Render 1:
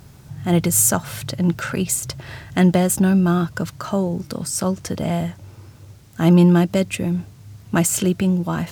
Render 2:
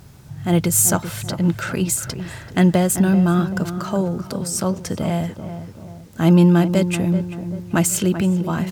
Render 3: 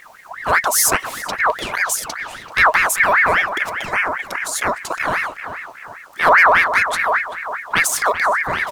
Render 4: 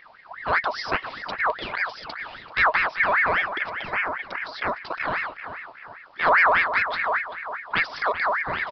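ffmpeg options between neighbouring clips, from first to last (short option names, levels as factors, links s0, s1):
-filter_complex "[0:a]asplit=2[s0][s1];[s1]adelay=386,lowpass=f=1500:p=1,volume=0.316,asplit=2[s2][s3];[s3]adelay=386,lowpass=f=1500:p=1,volume=0.46,asplit=2[s4][s5];[s5]adelay=386,lowpass=f=1500:p=1,volume=0.46,asplit=2[s6][s7];[s7]adelay=386,lowpass=f=1500:p=1,volume=0.46,asplit=2[s8][s9];[s9]adelay=386,lowpass=f=1500:p=1,volume=0.46[s10];[s0][s2][s4][s6][s8][s10]amix=inputs=6:normalize=0"
-af "aeval=exprs='val(0)*sin(2*PI*1400*n/s+1400*0.45/5*sin(2*PI*5*n/s))':c=same,volume=1.5"
-af "aresample=11025,aresample=44100,volume=0.473"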